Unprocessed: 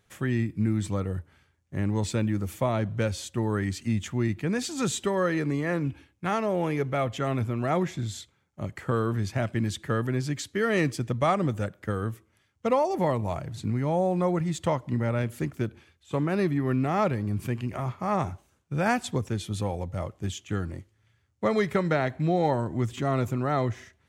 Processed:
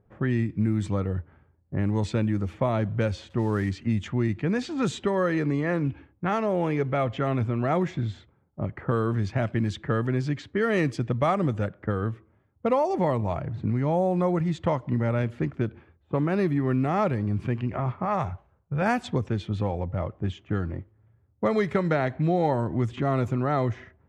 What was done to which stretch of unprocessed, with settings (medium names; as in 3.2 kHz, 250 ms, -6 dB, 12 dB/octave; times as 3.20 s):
3.30–3.71 s: zero-crossing glitches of -34 dBFS
18.05–18.82 s: peaking EQ 280 Hz -13.5 dB 0.78 oct
whole clip: level-controlled noise filter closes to 680 Hz, open at -20.5 dBFS; treble shelf 3.5 kHz -7.5 dB; compression 1.5:1, threshold -36 dBFS; trim +6.5 dB